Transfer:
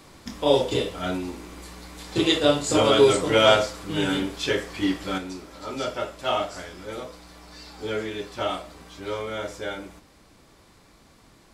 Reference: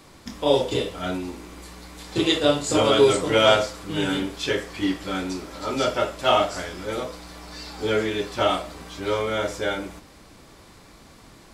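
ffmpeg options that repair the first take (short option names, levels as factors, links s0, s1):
-af "asetnsamples=n=441:p=0,asendcmd='5.18 volume volume 6dB',volume=1"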